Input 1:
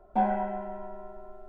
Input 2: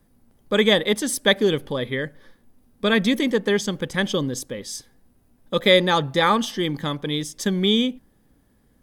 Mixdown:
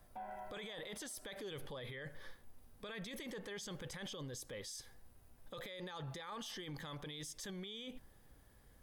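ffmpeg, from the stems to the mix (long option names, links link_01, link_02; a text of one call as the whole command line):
ffmpeg -i stem1.wav -i stem2.wav -filter_complex "[0:a]highpass=frequency=1200:poles=1,volume=-10.5dB[link_01];[1:a]equalizer=frequency=240:width_type=o:width=1.3:gain=-12,acompressor=threshold=-21dB:ratio=6,alimiter=level_in=7dB:limit=-24dB:level=0:latency=1:release=11,volume=-7dB,volume=-0.5dB[link_02];[link_01][link_02]amix=inputs=2:normalize=0,alimiter=level_in=15dB:limit=-24dB:level=0:latency=1:release=87,volume=-15dB" out.wav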